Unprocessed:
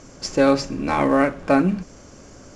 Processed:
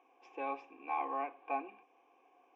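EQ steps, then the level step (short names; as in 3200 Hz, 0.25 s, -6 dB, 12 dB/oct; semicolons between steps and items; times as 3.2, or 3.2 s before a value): vowel filter a; speaker cabinet 350–4600 Hz, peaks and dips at 420 Hz -5 dB, 620 Hz -10 dB, 1200 Hz -6 dB, 2800 Hz -5 dB; fixed phaser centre 910 Hz, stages 8; +1.0 dB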